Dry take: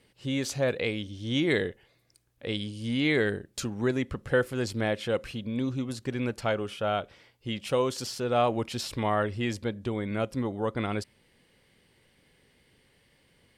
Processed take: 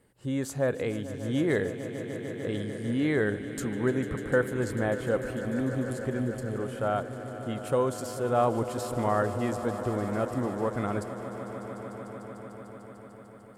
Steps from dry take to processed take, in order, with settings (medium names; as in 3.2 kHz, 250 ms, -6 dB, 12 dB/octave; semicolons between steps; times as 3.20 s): time-frequency box 6.19–6.55 s, 470–3800 Hz -28 dB; high-order bell 3.6 kHz -11.5 dB; echo with a slow build-up 149 ms, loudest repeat 5, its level -15 dB